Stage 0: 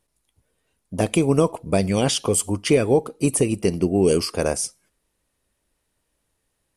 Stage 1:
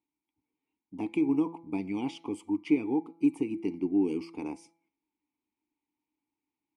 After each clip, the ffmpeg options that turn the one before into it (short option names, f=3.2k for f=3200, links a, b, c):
-filter_complex "[0:a]asplit=3[a][b][c];[a]bandpass=f=300:t=q:w=8,volume=0dB[d];[b]bandpass=f=870:t=q:w=8,volume=-6dB[e];[c]bandpass=f=2.24k:t=q:w=8,volume=-9dB[f];[d][e][f]amix=inputs=3:normalize=0,bandreject=f=166.9:t=h:w=4,bandreject=f=333.8:t=h:w=4,bandreject=f=500.7:t=h:w=4,bandreject=f=667.6:t=h:w=4,bandreject=f=834.5:t=h:w=4,bandreject=f=1.0014k:t=h:w=4,bandreject=f=1.1683k:t=h:w=4,bandreject=f=1.3352k:t=h:w=4,bandreject=f=1.5021k:t=h:w=4,bandreject=f=1.669k:t=h:w=4,bandreject=f=1.8359k:t=h:w=4,bandreject=f=2.0028k:t=h:w=4,bandreject=f=2.1697k:t=h:w=4,bandreject=f=2.3366k:t=h:w=4"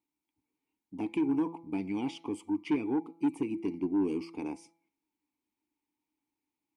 -af "asoftclip=type=tanh:threshold=-22dB"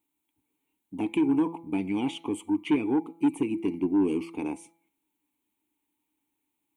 -af "aexciter=amount=1.1:drive=2.8:freq=2.7k,volume=5dB"